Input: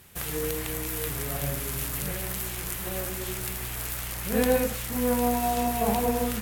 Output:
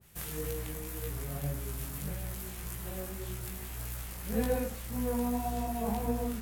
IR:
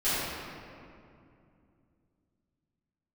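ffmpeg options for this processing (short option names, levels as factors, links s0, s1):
-af "bass=f=250:g=5,treble=f=4000:g=3,flanger=delay=17:depth=4.5:speed=1.8,adynamicequalizer=threshold=0.00501:dfrequency=1500:dqfactor=0.7:tfrequency=1500:tqfactor=0.7:attack=5:release=100:ratio=0.375:range=3:mode=cutabove:tftype=highshelf,volume=0.531"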